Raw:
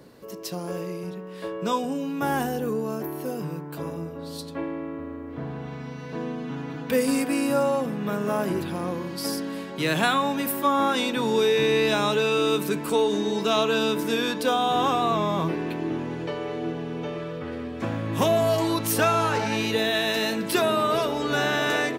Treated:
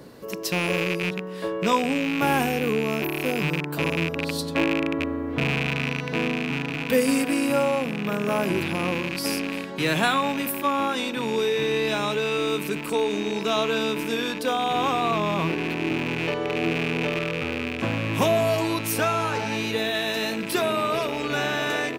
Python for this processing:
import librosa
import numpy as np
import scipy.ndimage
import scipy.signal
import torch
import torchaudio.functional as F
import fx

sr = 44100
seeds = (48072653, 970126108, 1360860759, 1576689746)

y = fx.rattle_buzz(x, sr, strikes_db=-36.0, level_db=-21.0)
y = fx.rider(y, sr, range_db=10, speed_s=2.0)